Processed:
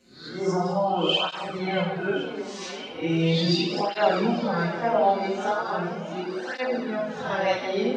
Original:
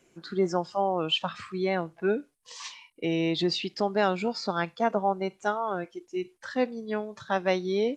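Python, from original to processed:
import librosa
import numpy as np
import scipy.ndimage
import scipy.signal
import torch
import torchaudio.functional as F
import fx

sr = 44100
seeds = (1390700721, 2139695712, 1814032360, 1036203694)

y = fx.spec_swells(x, sr, rise_s=0.44)
y = fx.lowpass(y, sr, hz=2000.0, slope=12, at=(4.15, 4.87))
y = fx.echo_swing(y, sr, ms=1070, ratio=1.5, feedback_pct=65, wet_db=-16)
y = fx.room_shoebox(y, sr, seeds[0], volume_m3=580.0, walls='mixed', distance_m=2.0)
y = fx.flanger_cancel(y, sr, hz=0.38, depth_ms=6.8)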